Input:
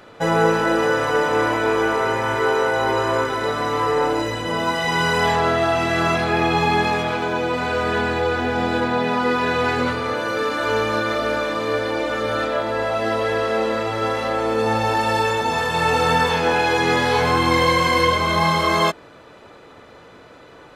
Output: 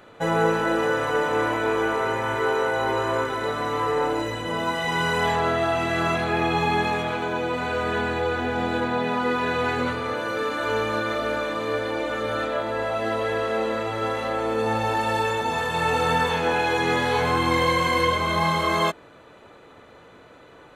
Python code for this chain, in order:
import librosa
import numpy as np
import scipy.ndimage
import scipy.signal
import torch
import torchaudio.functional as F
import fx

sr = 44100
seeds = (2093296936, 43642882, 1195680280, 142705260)

y = fx.peak_eq(x, sr, hz=5100.0, db=-11.0, octaves=0.23)
y = F.gain(torch.from_numpy(y), -4.0).numpy()